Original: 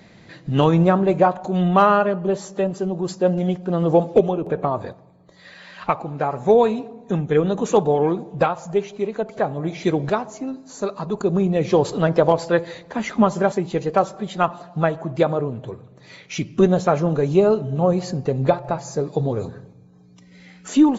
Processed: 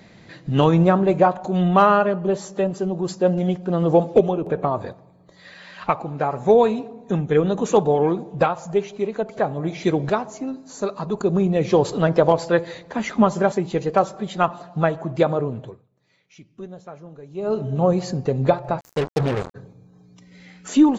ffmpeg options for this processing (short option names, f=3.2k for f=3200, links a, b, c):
-filter_complex "[0:a]asplit=3[a][b][c];[a]afade=t=out:st=18.79:d=0.02[d];[b]acrusher=bits=3:mix=0:aa=0.5,afade=t=in:st=18.79:d=0.02,afade=t=out:st=19.54:d=0.02[e];[c]afade=t=in:st=19.54:d=0.02[f];[d][e][f]amix=inputs=3:normalize=0,asplit=3[g][h][i];[g]atrim=end=15.91,asetpts=PTS-STARTPTS,afade=t=out:st=15.6:d=0.31:c=qua:silence=0.0891251[j];[h]atrim=start=15.91:end=17.29,asetpts=PTS-STARTPTS,volume=-21dB[k];[i]atrim=start=17.29,asetpts=PTS-STARTPTS,afade=t=in:d=0.31:c=qua:silence=0.0891251[l];[j][k][l]concat=n=3:v=0:a=1"